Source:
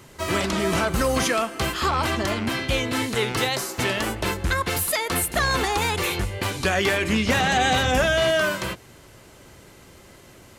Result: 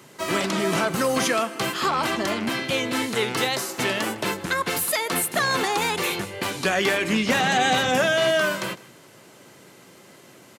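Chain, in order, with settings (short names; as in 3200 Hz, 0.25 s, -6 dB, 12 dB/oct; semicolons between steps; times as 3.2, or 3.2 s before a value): HPF 140 Hz 24 dB/oct; on a send: echo 0.155 s -21 dB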